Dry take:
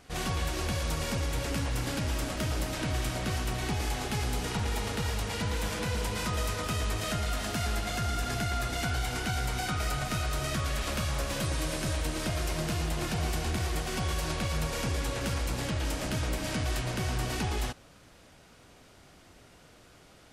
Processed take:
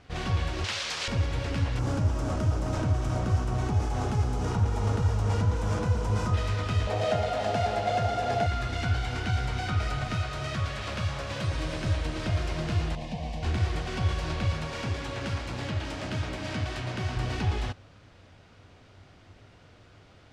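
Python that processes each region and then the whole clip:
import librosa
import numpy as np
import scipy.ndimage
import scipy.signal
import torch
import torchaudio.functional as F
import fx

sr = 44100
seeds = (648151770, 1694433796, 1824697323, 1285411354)

y = fx.chain(x, sr, fx.weighting(curve='ITU-R 468'),
    fx.doppler_dist(depth_ms=0.55), at=(0.64, 1.08))
y = fx.chain(y, sr, fx.band_shelf(hz=2800.0, db=-10.5, octaves=1.7),
    fx.env_flatten(amount_pct=70), at=(1.79, 6.34))
y = fx.chain(y, sr, fx.highpass(hz=110.0, slope=12),
    fx.band_shelf(hz=620.0, db=12.5, octaves=1.1), at=(6.87, 8.47))
y = fx.chain(y, sr, fx.highpass(hz=87.0, slope=12),
    fx.peak_eq(hz=280.0, db=-4.5, octaves=0.92), at=(10.15, 11.55))
y = fx.chain(y, sr, fx.high_shelf(hz=4100.0, db=-9.5),
    fx.fixed_phaser(hz=370.0, stages=6), at=(12.95, 13.43))
y = fx.chain(y, sr, fx.highpass(hz=140.0, slope=6),
    fx.notch(hz=490.0, q=12.0), at=(14.53, 17.17))
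y = scipy.signal.sosfilt(scipy.signal.butter(2, 4500.0, 'lowpass', fs=sr, output='sos'), y)
y = fx.peak_eq(y, sr, hz=97.0, db=12.5, octaves=0.43)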